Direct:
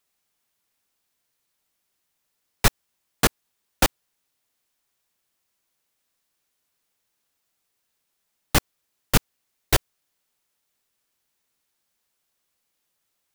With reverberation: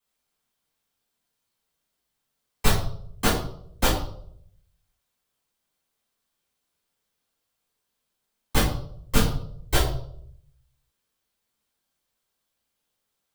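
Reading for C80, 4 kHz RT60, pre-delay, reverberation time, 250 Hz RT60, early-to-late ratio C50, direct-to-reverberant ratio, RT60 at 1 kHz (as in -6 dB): 9.0 dB, 0.50 s, 4 ms, 0.65 s, 0.75 s, 5.5 dB, -9.0 dB, 0.55 s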